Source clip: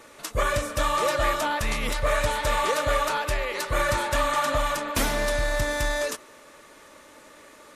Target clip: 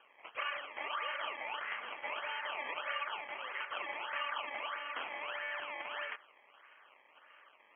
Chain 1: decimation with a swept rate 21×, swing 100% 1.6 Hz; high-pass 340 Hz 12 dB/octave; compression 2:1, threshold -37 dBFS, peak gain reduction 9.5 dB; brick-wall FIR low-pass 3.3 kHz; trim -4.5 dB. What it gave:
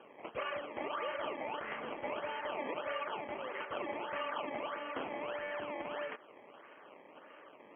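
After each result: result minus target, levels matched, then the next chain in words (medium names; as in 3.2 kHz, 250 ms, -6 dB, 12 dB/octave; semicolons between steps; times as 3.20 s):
250 Hz band +16.0 dB; compression: peak gain reduction +5 dB
decimation with a swept rate 21×, swing 100% 1.6 Hz; high-pass 1.3 kHz 12 dB/octave; compression 2:1, threshold -37 dBFS, peak gain reduction 8.5 dB; brick-wall FIR low-pass 3.3 kHz; trim -4.5 dB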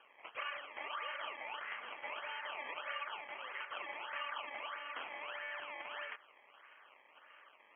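compression: peak gain reduction +4 dB
decimation with a swept rate 21×, swing 100% 1.6 Hz; high-pass 1.3 kHz 12 dB/octave; compression 2:1, threshold -29 dBFS, peak gain reduction 4.5 dB; brick-wall FIR low-pass 3.3 kHz; trim -4.5 dB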